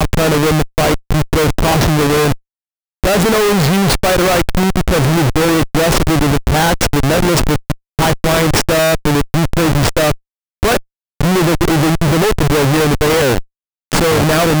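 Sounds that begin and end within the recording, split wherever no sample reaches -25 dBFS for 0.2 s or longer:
3.04–7.73 s
7.99–10.14 s
10.63–10.79 s
11.21–13.41 s

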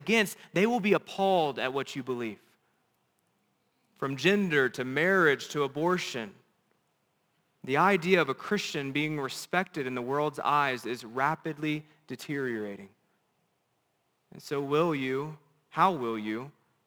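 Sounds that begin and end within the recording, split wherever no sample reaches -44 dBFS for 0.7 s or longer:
4.00–6.31 s
7.64–12.86 s

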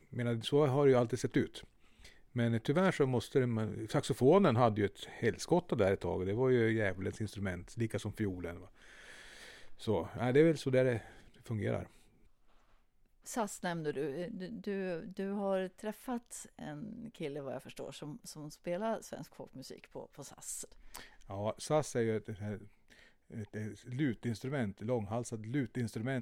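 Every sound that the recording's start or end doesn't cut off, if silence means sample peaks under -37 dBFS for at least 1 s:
9.84–11.83 s

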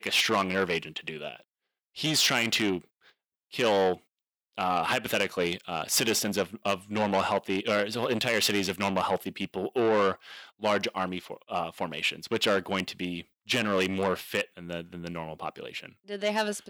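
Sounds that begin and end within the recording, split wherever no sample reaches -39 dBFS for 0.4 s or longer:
1.96–2.78 s
3.53–3.95 s

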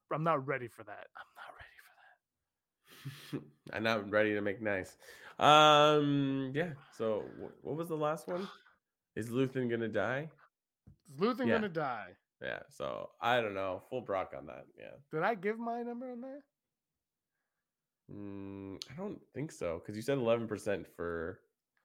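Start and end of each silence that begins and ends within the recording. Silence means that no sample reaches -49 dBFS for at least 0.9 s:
1.86–2.91 s
16.40–18.09 s

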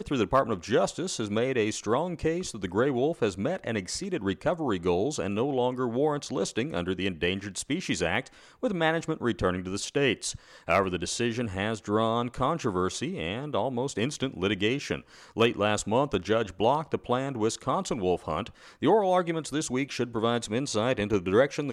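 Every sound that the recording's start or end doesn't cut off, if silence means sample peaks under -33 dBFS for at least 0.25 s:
8.63–10.35 s
10.68–15.00 s
15.37–18.47 s

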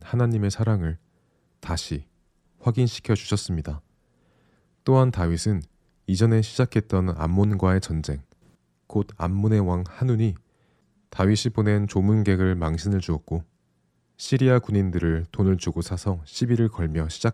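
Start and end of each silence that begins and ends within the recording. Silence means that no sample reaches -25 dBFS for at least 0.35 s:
0.93–1.69 s
1.97–2.66 s
3.74–4.87 s
5.59–6.09 s
8.15–8.95 s
10.32–11.19 s
13.39–14.23 s

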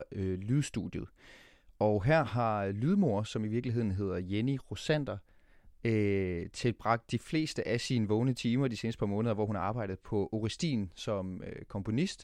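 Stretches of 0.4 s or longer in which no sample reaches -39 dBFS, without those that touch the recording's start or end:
1.04–1.81 s
5.17–5.85 s

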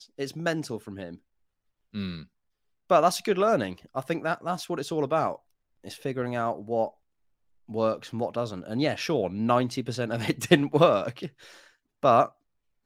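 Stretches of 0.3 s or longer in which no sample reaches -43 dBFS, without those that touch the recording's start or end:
1.15–1.94 s
2.24–2.90 s
5.36–5.84 s
6.90–7.69 s
11.61–12.03 s

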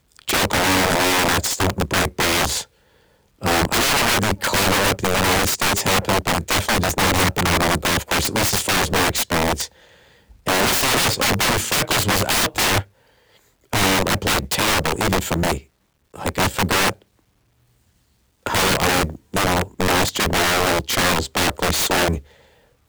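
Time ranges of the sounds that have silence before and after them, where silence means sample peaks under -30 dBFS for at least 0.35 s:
3.42–9.67 s
10.47–12.83 s
13.73–15.59 s
16.14–16.93 s
18.46–22.20 s

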